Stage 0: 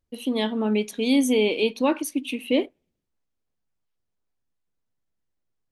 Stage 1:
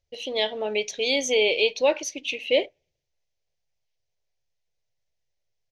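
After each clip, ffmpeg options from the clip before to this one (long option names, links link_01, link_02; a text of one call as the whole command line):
ffmpeg -i in.wav -af "firequalizer=gain_entry='entry(140,0);entry(220,-19);entry(400,-2);entry(580,6);entry(1200,-10);entry(2000,5);entry(3500,5);entry(6100,9);entry(9400,-19);entry(14000,-15)':delay=0.05:min_phase=1" out.wav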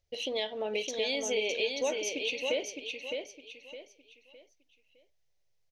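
ffmpeg -i in.wav -af "acompressor=threshold=-32dB:ratio=3,aecho=1:1:611|1222|1833|2444:0.562|0.18|0.0576|0.0184" out.wav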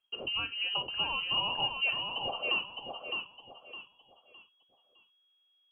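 ffmpeg -i in.wav -af "lowpass=frequency=2800:width_type=q:width=0.5098,lowpass=frequency=2800:width_type=q:width=0.6013,lowpass=frequency=2800:width_type=q:width=0.9,lowpass=frequency=2800:width_type=q:width=2.563,afreqshift=-3300" out.wav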